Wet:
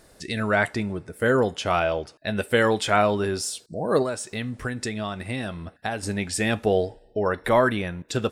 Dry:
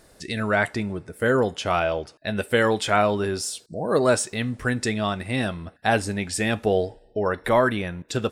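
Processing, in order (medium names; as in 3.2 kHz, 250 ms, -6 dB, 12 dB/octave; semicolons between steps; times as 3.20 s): 4.02–6.03 s: compression 6:1, threshold -26 dBFS, peak gain reduction 11.5 dB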